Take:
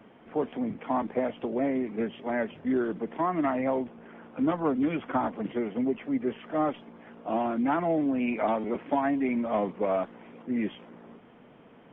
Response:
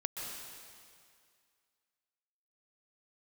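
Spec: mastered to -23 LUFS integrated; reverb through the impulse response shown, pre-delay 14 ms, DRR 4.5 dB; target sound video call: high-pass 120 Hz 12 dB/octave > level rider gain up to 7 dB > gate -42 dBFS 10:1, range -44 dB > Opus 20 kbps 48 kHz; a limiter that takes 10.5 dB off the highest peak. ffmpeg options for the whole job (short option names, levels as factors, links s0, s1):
-filter_complex "[0:a]alimiter=limit=0.0631:level=0:latency=1,asplit=2[s0][s1];[1:a]atrim=start_sample=2205,adelay=14[s2];[s1][s2]afir=irnorm=-1:irlink=0,volume=0.473[s3];[s0][s3]amix=inputs=2:normalize=0,highpass=120,dynaudnorm=m=2.24,agate=range=0.00631:threshold=0.00794:ratio=10,volume=3.16" -ar 48000 -c:a libopus -b:a 20k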